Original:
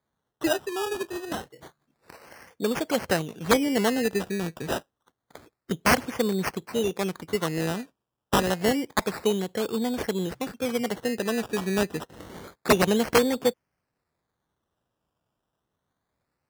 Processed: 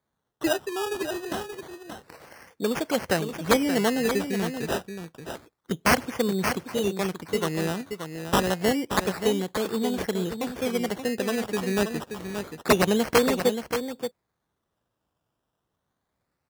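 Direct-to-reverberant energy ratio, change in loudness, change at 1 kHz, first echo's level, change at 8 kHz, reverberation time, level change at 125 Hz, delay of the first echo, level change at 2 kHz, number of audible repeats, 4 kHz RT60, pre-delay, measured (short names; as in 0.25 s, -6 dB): none, 0.0 dB, +0.5 dB, -8.0 dB, +0.5 dB, none, +0.5 dB, 0.578 s, +0.5 dB, 1, none, none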